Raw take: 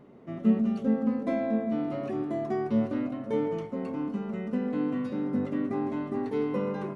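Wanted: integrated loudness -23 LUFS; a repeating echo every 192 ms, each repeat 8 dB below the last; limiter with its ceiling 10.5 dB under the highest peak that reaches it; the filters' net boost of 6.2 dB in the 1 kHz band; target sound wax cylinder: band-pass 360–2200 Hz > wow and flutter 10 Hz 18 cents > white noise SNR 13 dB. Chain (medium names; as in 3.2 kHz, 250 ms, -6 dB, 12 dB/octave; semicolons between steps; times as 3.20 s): peaking EQ 1 kHz +9 dB; peak limiter -22 dBFS; band-pass 360–2200 Hz; feedback delay 192 ms, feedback 40%, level -8 dB; wow and flutter 10 Hz 18 cents; white noise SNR 13 dB; trim +10 dB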